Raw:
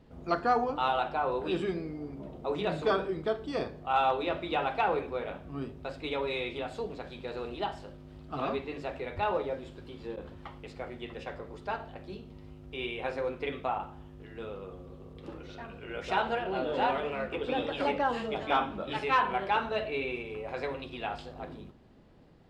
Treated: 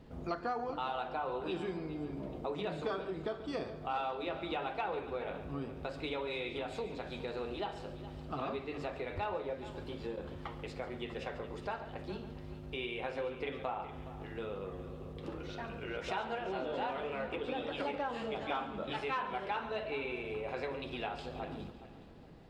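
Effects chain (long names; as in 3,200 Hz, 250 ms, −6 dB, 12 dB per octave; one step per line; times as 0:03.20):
downward compressor 3 to 1, threshold −40 dBFS, peak gain reduction 14 dB
on a send: echo machine with several playback heads 139 ms, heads first and third, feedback 44%, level −15 dB
on the sum: level +2.5 dB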